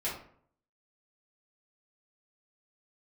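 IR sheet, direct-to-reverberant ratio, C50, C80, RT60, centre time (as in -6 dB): -9.0 dB, 4.5 dB, 9.5 dB, 0.60 s, 36 ms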